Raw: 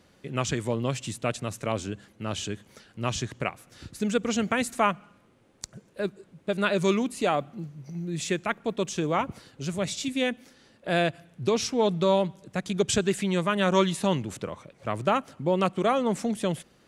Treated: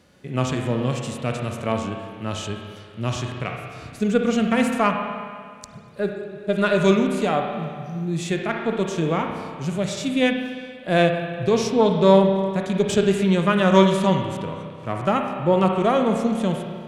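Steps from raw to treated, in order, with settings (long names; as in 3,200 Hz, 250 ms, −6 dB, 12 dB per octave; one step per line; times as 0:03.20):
harmonic generator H 6 −29 dB, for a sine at −8 dBFS
spring reverb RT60 2 s, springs 31/58 ms, chirp 45 ms, DRR 5 dB
harmonic and percussive parts rebalanced percussive −10 dB
level +6 dB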